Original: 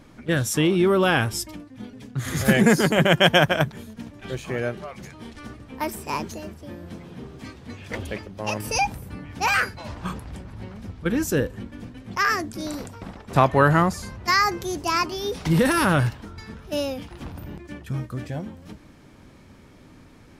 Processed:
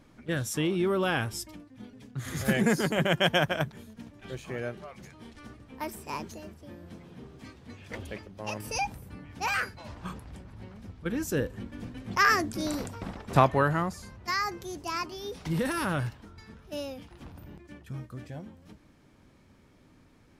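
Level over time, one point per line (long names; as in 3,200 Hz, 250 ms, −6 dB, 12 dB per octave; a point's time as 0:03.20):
0:11.19 −8 dB
0:11.99 −0.5 dB
0:13.28 −0.5 dB
0:13.74 −10 dB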